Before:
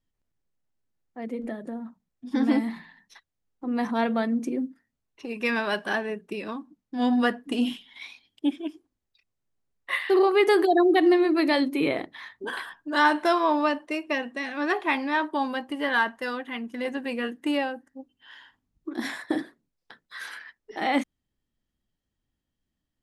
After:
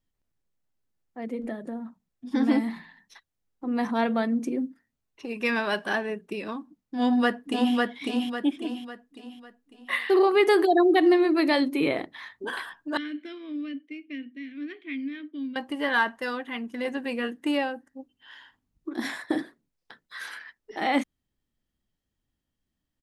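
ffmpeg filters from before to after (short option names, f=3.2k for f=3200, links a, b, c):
-filter_complex "[0:a]asplit=2[a][b];[b]afade=t=in:st=6.98:d=0.01,afade=t=out:st=7.74:d=0.01,aecho=0:1:550|1100|1650|2200|2750:0.841395|0.336558|0.134623|0.0538493|0.0215397[c];[a][c]amix=inputs=2:normalize=0,asettb=1/sr,asplit=3[d][e][f];[d]atrim=end=12.974[g];[e]atrim=start=12.97:end=15.56,asetpts=PTS-STARTPTS,afade=t=in:d=0.004:c=qsin,afade=t=out:st=2.586:d=0.004:c=qsin,asplit=3[h][i][j];[h]bandpass=f=270:t=q:w=8,volume=0dB[k];[i]bandpass=f=2.29k:t=q:w=8,volume=-6dB[l];[j]bandpass=f=3.01k:t=q:w=8,volume=-9dB[m];[k][l][m]amix=inputs=3:normalize=0[n];[f]atrim=start=15.556[o];[g][n]acrossfade=d=0.004:c1=hsin:c2=qsin[p];[p][o]acrossfade=d=0.004:c1=qsin:c2=hsin"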